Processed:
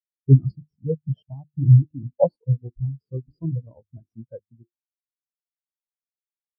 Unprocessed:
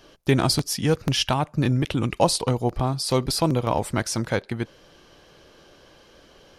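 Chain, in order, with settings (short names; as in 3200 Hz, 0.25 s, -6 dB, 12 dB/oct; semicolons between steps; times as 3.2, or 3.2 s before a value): notches 50/100/150/200/250/300/350 Hz; in parallel at -3.5 dB: decimation with a swept rate 29×, swing 160% 0.39 Hz; on the sum: spectral expander 4:1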